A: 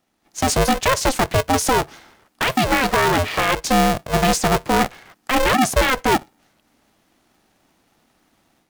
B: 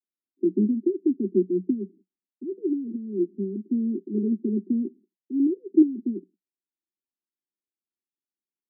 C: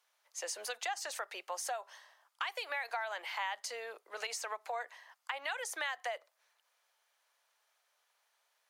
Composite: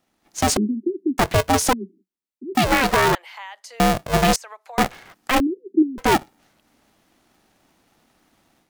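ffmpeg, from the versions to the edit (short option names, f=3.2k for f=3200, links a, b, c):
-filter_complex "[1:a]asplit=3[a][b][c];[2:a]asplit=2[d][e];[0:a]asplit=6[f][g][h][i][j][k];[f]atrim=end=0.572[l];[a]atrim=start=0.568:end=1.182[m];[g]atrim=start=1.178:end=1.732[n];[b]atrim=start=1.728:end=2.552[o];[h]atrim=start=2.548:end=3.152[p];[d]atrim=start=3.148:end=3.802[q];[i]atrim=start=3.798:end=4.362[r];[e]atrim=start=4.358:end=4.782[s];[j]atrim=start=4.778:end=5.402[t];[c]atrim=start=5.398:end=5.982[u];[k]atrim=start=5.978[v];[l][m]acrossfade=d=0.004:c1=hsin:c2=hsin[w];[w][n]acrossfade=d=0.004:c1=hsin:c2=hsin[x];[x][o]acrossfade=d=0.004:c1=hsin:c2=hsin[y];[y][p]acrossfade=d=0.004:c1=hsin:c2=hsin[z];[z][q]acrossfade=d=0.004:c1=hsin:c2=hsin[aa];[aa][r]acrossfade=d=0.004:c1=hsin:c2=hsin[ab];[ab][s]acrossfade=d=0.004:c1=hsin:c2=hsin[ac];[ac][t]acrossfade=d=0.004:c1=hsin:c2=hsin[ad];[ad][u]acrossfade=d=0.004:c1=hsin:c2=hsin[ae];[ae][v]acrossfade=d=0.004:c1=hsin:c2=hsin"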